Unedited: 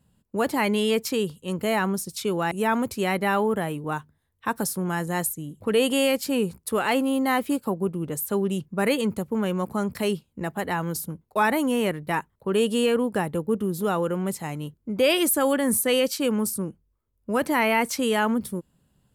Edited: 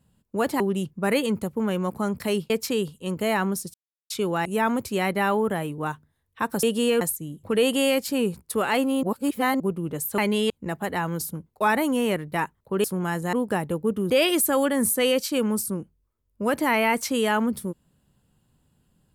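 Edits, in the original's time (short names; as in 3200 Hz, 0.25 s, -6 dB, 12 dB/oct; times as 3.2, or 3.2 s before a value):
0.6–0.92 swap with 8.35–10.25
2.16 insert silence 0.36 s
4.69–5.18 swap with 12.59–12.97
7.2–7.77 reverse
13.74–14.98 cut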